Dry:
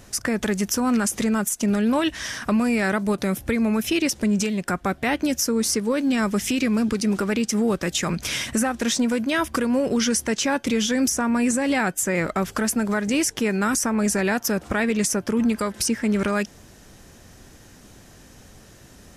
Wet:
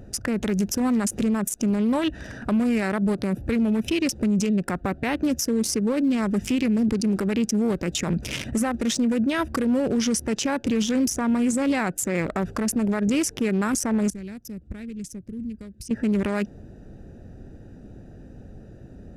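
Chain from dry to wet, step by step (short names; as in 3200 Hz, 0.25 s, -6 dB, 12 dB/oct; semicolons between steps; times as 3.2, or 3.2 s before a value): Wiener smoothing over 41 samples; 14.1–15.91 passive tone stack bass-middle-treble 10-0-1; limiter -22.5 dBFS, peak gain reduction 10 dB; gain +6.5 dB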